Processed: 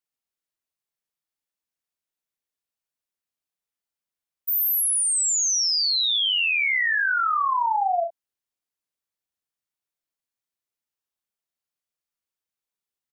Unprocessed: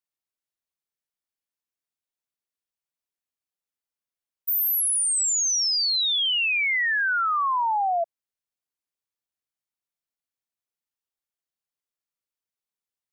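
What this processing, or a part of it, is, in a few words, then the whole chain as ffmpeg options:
slapback doubling: -filter_complex "[0:a]asplit=3[a][b][c];[b]adelay=37,volume=-7.5dB[d];[c]adelay=62,volume=-12dB[e];[a][d][e]amix=inputs=3:normalize=0"

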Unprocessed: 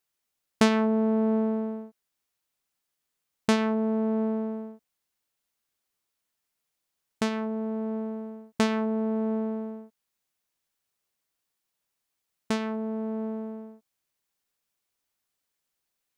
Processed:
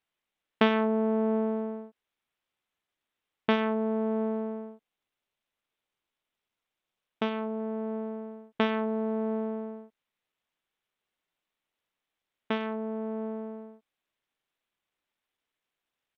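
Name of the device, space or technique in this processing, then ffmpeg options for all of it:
Bluetooth headset: -filter_complex "[0:a]asettb=1/sr,asplit=3[a][b][c];[a]atrim=end=4.694[d];[b]atrim=start=4.69:end=7.6,asetpts=PTS-STARTPTS,afade=t=in:d=0.004:c=qsin,afade=t=out:st=2.906:d=0.004:c=qsin,equalizer=f=1.8k:t=o:w=0.39:g=-5.5[e];[c]atrim=start=7.596[f];[d][e]acrossfade=d=0.004:c1=hsin:c2=qsin[g];[g][f]acrossfade=d=0.004:c1=qsin:c2=hsin,highpass=240,aresample=8000,aresample=44100" -ar 32000 -c:a sbc -b:a 64k

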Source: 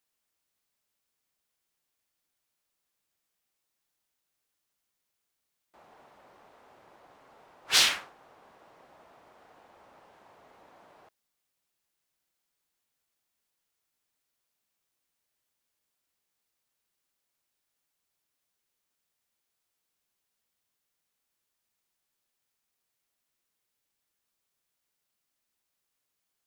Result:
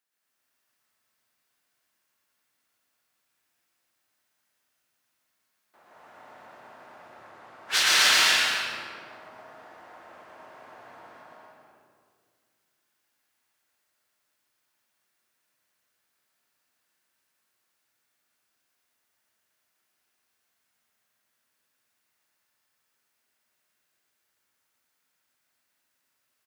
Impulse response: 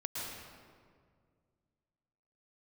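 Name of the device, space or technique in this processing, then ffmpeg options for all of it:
stadium PA: -filter_complex "[0:a]asettb=1/sr,asplit=3[a][b][c];[a]atrim=end=6.984[d];[b]atrim=start=6.98:end=7.41,asetpts=PTS-STARTPTS,afade=t=in:d=0.004:c=qsin,afade=t=out:st=0.426:d=0.004:c=qsin,lowpass=11k[e];[c]atrim=start=7.406[f];[d][e]acrossfade=d=0.004:c1=hsin:c2=qsin[g];[g][f]acrossfade=d=0.004:c1=qsin:c2=hsin,highpass=f=180:p=1,equalizer=f=1.6k:t=o:w=0.77:g=6,aecho=1:1:195.3|250.7|285.7:0.282|0.631|0.562[h];[1:a]atrim=start_sample=2205[i];[h][i]afir=irnorm=-1:irlink=0,aecho=1:1:120|210|277.5|328.1|366.1:0.631|0.398|0.251|0.158|0.1"

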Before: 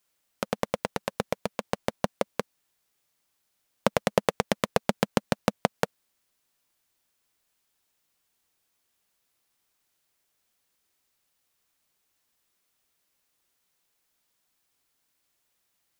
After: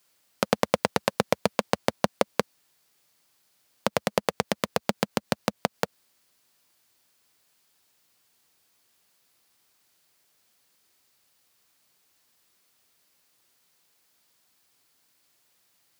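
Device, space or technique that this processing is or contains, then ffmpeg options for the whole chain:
broadcast voice chain: -af "highpass=f=78:w=0.5412,highpass=f=78:w=1.3066,deesser=0.3,acompressor=threshold=-22dB:ratio=4,equalizer=f=4.6k:t=o:w=0.3:g=3.5,alimiter=limit=-9dB:level=0:latency=1:release=98,volume=7.5dB"

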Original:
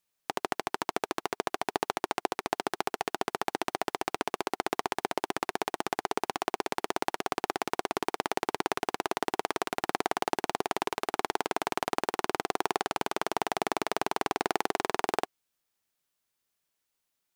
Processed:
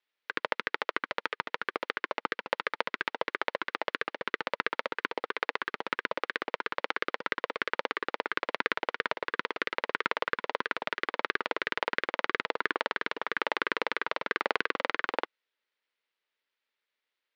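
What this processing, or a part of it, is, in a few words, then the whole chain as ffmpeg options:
voice changer toy: -af "aeval=exprs='val(0)*sin(2*PI*460*n/s+460*0.8/3*sin(2*PI*3*n/s))':c=same,highpass=450,equalizer=f=470:t=q:w=4:g=3,equalizer=f=720:t=q:w=4:g=-8,equalizer=f=1.1k:t=q:w=4:g=-3,equalizer=f=2k:t=q:w=4:g=4,lowpass=f=4k:w=0.5412,lowpass=f=4k:w=1.3066,volume=4.5dB"

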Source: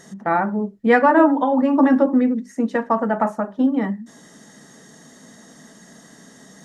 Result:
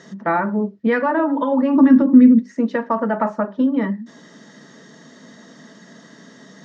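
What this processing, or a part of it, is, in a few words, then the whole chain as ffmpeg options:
PA system with an anti-feedback notch: -filter_complex "[0:a]highpass=130,asuperstop=centerf=770:order=4:qfactor=6,lowpass=f=5.4k:w=0.5412,lowpass=f=5.4k:w=1.3066,alimiter=limit=-12.5dB:level=0:latency=1:release=196,asplit=3[a][b][c];[a]afade=t=out:st=1.75:d=0.02[d];[b]asubboost=boost=11.5:cutoff=210,afade=t=in:st=1.75:d=0.02,afade=t=out:st=2.38:d=0.02[e];[c]afade=t=in:st=2.38:d=0.02[f];[d][e][f]amix=inputs=3:normalize=0,volume=3dB"

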